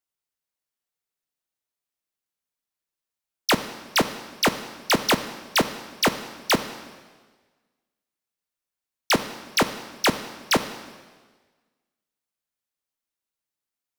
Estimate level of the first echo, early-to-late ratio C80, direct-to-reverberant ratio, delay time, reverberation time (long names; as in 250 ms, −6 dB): no echo audible, 13.0 dB, 10.0 dB, no echo audible, 1.4 s